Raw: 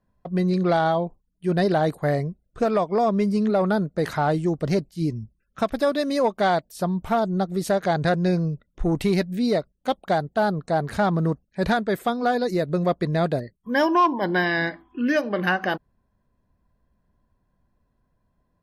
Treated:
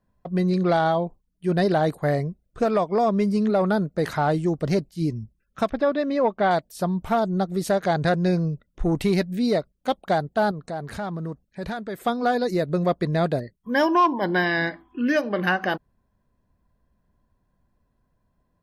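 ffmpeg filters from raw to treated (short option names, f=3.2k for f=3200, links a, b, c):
-filter_complex "[0:a]asettb=1/sr,asplit=3[a][b][c];[a]atrim=end=5.714[d];[b]atrim=start=5.71:end=6.51,asetpts=PTS-STARTPTS,afade=t=in:d=0.004:c=qsin,afade=t=out:st=0.796:d=0.004:c=qsin,lowpass=2.6k[e];[c]atrim=start=6.506[f];[d][e]acrossfade=d=0.004:c1=hsin:c2=qsin[g];[g][f]acrossfade=d=0.004:c1=qsin:c2=hsin,asettb=1/sr,asplit=3[h][i][j];[h]atrim=end=10.514[k];[i]atrim=start=10.51:end=12.06,asetpts=PTS-STARTPTS,afade=t=in:d=0.004:c=qsin,afade=t=out:st=1.546:d=0.004:c=qsin,acompressor=threshold=-34dB:ratio=2:attack=3.2:release=140:knee=1:detection=peak[l];[j]atrim=start=12.056[m];[k][l]acrossfade=d=0.004:c1=hsin:c2=qsin[n];[n][m]acrossfade=d=0.004:c1=qsin:c2=hsin"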